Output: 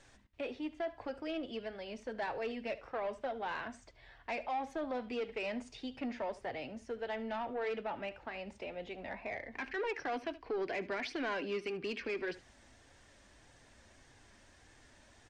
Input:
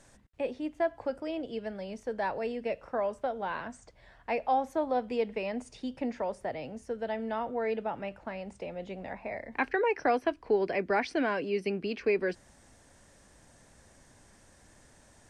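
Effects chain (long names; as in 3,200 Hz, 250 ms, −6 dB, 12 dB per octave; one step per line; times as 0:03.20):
parametric band 3,100 Hz +7.5 dB 2 octaves
brickwall limiter −21.5 dBFS, peak gain reduction 10.5 dB
flanger 1.7 Hz, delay 2.3 ms, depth 1.1 ms, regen −46%
soft clipping −31 dBFS, distortion −15 dB
high-frequency loss of the air 57 metres
single-tap delay 74 ms −17.5 dB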